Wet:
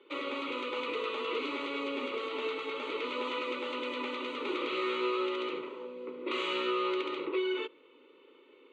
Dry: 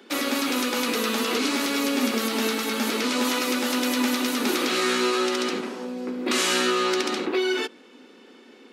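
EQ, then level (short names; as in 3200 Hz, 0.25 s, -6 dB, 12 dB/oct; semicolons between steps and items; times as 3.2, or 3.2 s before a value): LPF 5000 Hz 12 dB/oct; air absorption 130 m; fixed phaser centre 1100 Hz, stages 8; -5.5 dB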